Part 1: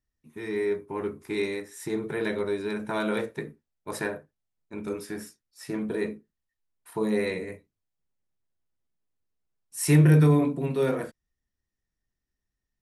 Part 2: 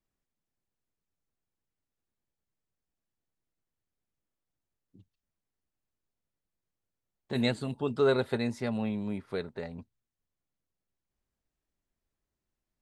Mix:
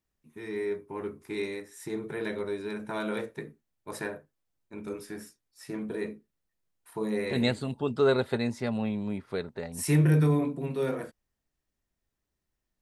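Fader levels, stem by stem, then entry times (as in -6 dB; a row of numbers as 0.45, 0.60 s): -4.5, +1.5 dB; 0.00, 0.00 s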